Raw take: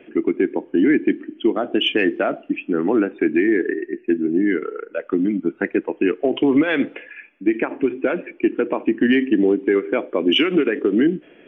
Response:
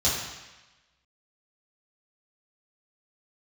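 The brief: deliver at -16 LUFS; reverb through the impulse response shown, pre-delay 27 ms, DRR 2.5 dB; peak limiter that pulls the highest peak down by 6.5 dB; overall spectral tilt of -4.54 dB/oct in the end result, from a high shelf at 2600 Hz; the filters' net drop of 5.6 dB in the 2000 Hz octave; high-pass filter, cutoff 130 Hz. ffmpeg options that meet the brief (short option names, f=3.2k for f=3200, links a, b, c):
-filter_complex "[0:a]highpass=130,equalizer=f=2k:t=o:g=-5,highshelf=f=2.6k:g=-5,alimiter=limit=-14dB:level=0:latency=1,asplit=2[a][b];[1:a]atrim=start_sample=2205,adelay=27[c];[b][c]afir=irnorm=-1:irlink=0,volume=-15dB[d];[a][d]amix=inputs=2:normalize=0,volume=6dB"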